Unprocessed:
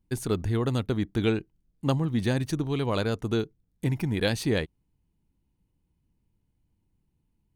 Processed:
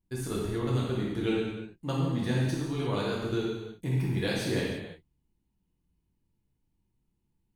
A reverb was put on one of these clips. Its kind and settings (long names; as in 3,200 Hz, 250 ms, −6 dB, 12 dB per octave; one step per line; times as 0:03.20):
reverb whose tail is shaped and stops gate 380 ms falling, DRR −5.5 dB
level −9 dB